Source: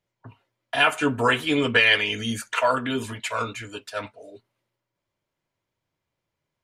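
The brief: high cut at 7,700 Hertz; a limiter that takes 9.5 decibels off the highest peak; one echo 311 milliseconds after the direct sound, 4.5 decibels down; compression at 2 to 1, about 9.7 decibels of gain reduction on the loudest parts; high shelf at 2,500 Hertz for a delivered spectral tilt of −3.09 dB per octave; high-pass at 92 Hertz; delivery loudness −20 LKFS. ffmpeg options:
ffmpeg -i in.wav -af "highpass=92,lowpass=7700,highshelf=frequency=2500:gain=7,acompressor=threshold=-29dB:ratio=2,alimiter=limit=-20.5dB:level=0:latency=1,aecho=1:1:311:0.596,volume=10dB" out.wav

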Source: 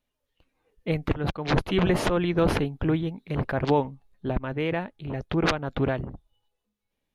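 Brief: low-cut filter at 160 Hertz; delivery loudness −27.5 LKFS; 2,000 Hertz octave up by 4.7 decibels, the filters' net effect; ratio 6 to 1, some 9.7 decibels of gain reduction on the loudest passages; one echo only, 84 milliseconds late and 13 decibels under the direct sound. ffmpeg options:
ffmpeg -i in.wav -af "highpass=160,equalizer=frequency=2000:width_type=o:gain=6,acompressor=threshold=-28dB:ratio=6,aecho=1:1:84:0.224,volume=6dB" out.wav

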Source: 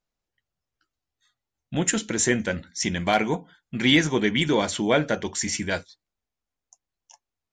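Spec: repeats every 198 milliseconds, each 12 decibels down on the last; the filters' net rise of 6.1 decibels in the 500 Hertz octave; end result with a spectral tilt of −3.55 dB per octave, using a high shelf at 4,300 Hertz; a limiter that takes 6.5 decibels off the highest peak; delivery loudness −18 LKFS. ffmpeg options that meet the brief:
ffmpeg -i in.wav -af "equalizer=frequency=500:width_type=o:gain=7.5,highshelf=frequency=4300:gain=3.5,alimiter=limit=-9.5dB:level=0:latency=1,aecho=1:1:198|396|594:0.251|0.0628|0.0157,volume=4.5dB" out.wav

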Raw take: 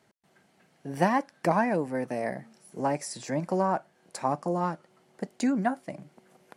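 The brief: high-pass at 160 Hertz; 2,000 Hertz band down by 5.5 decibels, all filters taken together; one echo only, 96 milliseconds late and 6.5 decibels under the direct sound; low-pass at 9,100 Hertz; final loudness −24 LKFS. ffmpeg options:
ffmpeg -i in.wav -af "highpass=160,lowpass=9100,equalizer=frequency=2000:width_type=o:gain=-7,aecho=1:1:96:0.473,volume=5.5dB" out.wav

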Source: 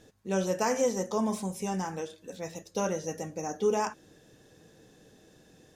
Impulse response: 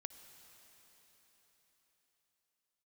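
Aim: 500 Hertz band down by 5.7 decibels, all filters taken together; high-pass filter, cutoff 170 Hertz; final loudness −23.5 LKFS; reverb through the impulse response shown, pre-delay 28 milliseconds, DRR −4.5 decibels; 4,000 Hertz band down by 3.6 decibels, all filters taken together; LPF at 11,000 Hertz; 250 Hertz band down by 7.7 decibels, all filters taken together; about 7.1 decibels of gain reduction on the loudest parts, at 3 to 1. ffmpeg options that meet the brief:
-filter_complex "[0:a]highpass=170,lowpass=11000,equalizer=frequency=250:width_type=o:gain=-7.5,equalizer=frequency=500:width_type=o:gain=-4.5,equalizer=frequency=4000:width_type=o:gain=-5.5,acompressor=threshold=-37dB:ratio=3,asplit=2[link_01][link_02];[1:a]atrim=start_sample=2205,adelay=28[link_03];[link_02][link_03]afir=irnorm=-1:irlink=0,volume=8.5dB[link_04];[link_01][link_04]amix=inputs=2:normalize=0,volume=12.5dB"

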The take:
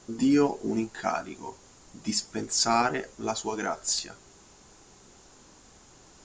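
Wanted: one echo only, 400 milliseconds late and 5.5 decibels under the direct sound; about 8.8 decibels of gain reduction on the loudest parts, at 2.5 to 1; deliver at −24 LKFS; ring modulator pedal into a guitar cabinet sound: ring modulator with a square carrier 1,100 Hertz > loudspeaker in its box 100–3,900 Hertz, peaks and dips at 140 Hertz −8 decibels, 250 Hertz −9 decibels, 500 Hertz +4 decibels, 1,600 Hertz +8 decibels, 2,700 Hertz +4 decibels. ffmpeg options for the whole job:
ffmpeg -i in.wav -af "acompressor=threshold=-32dB:ratio=2.5,aecho=1:1:400:0.531,aeval=exprs='val(0)*sgn(sin(2*PI*1100*n/s))':channel_layout=same,highpass=100,equalizer=frequency=140:width_type=q:width=4:gain=-8,equalizer=frequency=250:width_type=q:width=4:gain=-9,equalizer=frequency=500:width_type=q:width=4:gain=4,equalizer=frequency=1600:width_type=q:width=4:gain=8,equalizer=frequency=2700:width_type=q:width=4:gain=4,lowpass=frequency=3900:width=0.5412,lowpass=frequency=3900:width=1.3066,volume=8dB" out.wav

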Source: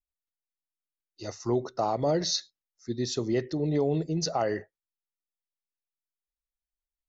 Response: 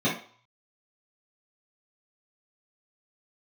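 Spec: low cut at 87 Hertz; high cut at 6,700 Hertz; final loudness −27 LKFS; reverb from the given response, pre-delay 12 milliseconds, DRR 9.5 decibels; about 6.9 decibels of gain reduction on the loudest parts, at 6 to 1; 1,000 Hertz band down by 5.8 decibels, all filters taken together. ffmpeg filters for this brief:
-filter_complex "[0:a]highpass=87,lowpass=6700,equalizer=frequency=1000:width_type=o:gain=-9,acompressor=threshold=-30dB:ratio=6,asplit=2[link_01][link_02];[1:a]atrim=start_sample=2205,adelay=12[link_03];[link_02][link_03]afir=irnorm=-1:irlink=0,volume=-22.5dB[link_04];[link_01][link_04]amix=inputs=2:normalize=0,volume=7.5dB"

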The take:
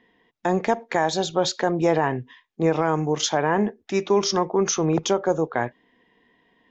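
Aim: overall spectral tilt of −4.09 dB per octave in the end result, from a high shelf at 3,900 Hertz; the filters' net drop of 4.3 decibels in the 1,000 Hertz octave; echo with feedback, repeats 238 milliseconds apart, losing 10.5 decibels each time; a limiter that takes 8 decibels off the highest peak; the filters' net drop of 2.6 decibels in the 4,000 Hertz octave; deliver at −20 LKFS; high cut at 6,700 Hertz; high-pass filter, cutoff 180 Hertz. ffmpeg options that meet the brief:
ffmpeg -i in.wav -af "highpass=180,lowpass=6700,equalizer=frequency=1000:width_type=o:gain=-6,highshelf=frequency=3900:gain=6,equalizer=frequency=4000:width_type=o:gain=-6.5,alimiter=limit=-19dB:level=0:latency=1,aecho=1:1:238|476|714:0.299|0.0896|0.0269,volume=9dB" out.wav

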